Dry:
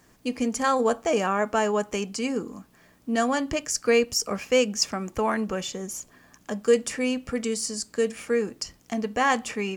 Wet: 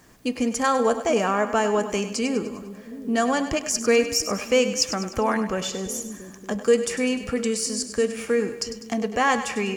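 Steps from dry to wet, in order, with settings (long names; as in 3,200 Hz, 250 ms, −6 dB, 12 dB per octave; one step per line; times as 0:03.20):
in parallel at −3 dB: downward compressor, threshold −31 dBFS, peak gain reduction 15.5 dB
on the sum: echo with a time of its own for lows and highs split 400 Hz, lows 686 ms, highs 100 ms, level −11 dB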